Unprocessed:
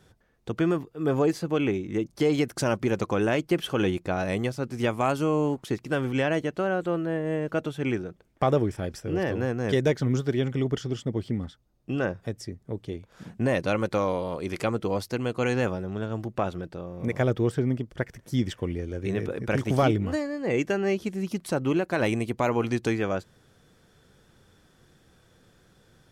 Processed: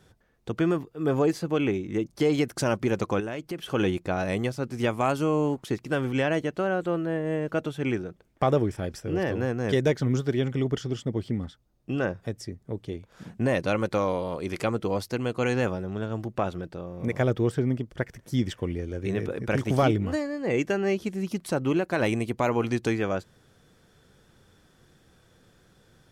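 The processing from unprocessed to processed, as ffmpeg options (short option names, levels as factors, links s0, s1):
-filter_complex "[0:a]asettb=1/sr,asplit=3[s0][s1][s2];[s0]atrim=end=3.204[s3];[s1]atrim=start=3.2:end=3.68,asetpts=PTS-STARTPTS,afade=t=in:d=0.004:c=qsin,afade=t=out:st=0.476:d=0.004:c=qsin,acompressor=threshold=0.0141:ratio=2:attack=3.2:release=140:knee=1:detection=peak[s4];[s2]atrim=start=3.676[s5];[s3][s4]acrossfade=d=0.004:c1=hsin:c2=qsin[s6];[s6][s5]acrossfade=d=0.004:c1=qsin:c2=hsin"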